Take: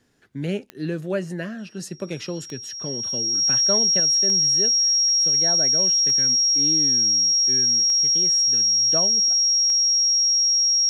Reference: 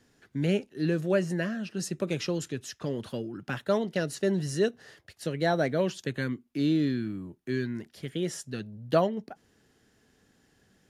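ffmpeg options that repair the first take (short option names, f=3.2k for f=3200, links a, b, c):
-af "adeclick=t=4,bandreject=f=5.6k:w=30,asetnsamples=n=441:p=0,asendcmd='4 volume volume 5dB',volume=0dB"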